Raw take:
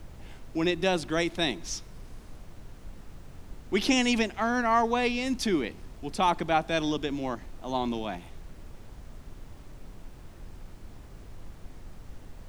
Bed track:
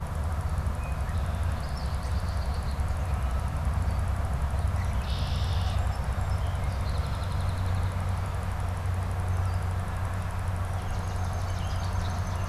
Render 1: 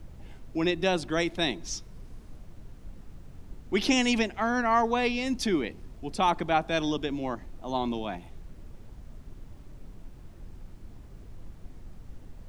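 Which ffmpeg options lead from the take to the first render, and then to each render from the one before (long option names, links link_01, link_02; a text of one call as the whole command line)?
ffmpeg -i in.wav -af "afftdn=noise_reduction=6:noise_floor=-48" out.wav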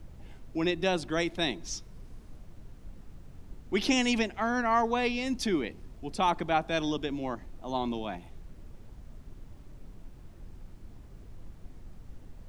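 ffmpeg -i in.wav -af "volume=-2dB" out.wav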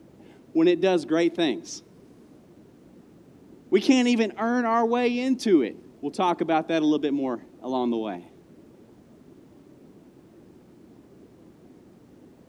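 ffmpeg -i in.wav -af "highpass=170,equalizer=frequency=330:width_type=o:width=1.5:gain=11" out.wav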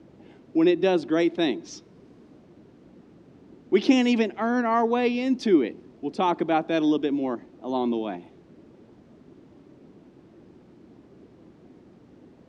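ffmpeg -i in.wav -af "lowpass=5000" out.wav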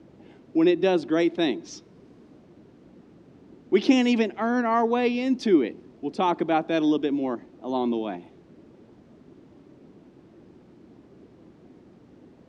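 ffmpeg -i in.wav -af anull out.wav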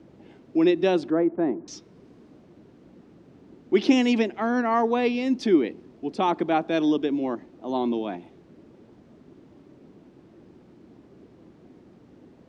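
ffmpeg -i in.wav -filter_complex "[0:a]asettb=1/sr,asplit=3[link_01][link_02][link_03];[link_01]atrim=end=1.104[link_04];[link_02]atrim=start=1.1:end=1.68,asetpts=PTS-STARTPTS,afade=type=in:duration=0.004:curve=qsin,afade=type=out:start_time=0.576:duration=0.004:curve=qsin,lowpass=frequency=1400:width=0.5412,lowpass=frequency=1400:width=1.3066[link_05];[link_03]atrim=start=1.676[link_06];[link_04][link_05]acrossfade=duration=0.004:curve1=hsin:curve2=qsin[link_07];[link_07][link_06]acrossfade=duration=0.004:curve1=qsin:curve2=hsin" out.wav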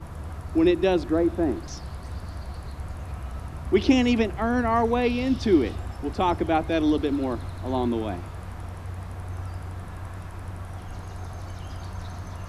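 ffmpeg -i in.wav -i bed.wav -filter_complex "[1:a]volume=-6dB[link_01];[0:a][link_01]amix=inputs=2:normalize=0" out.wav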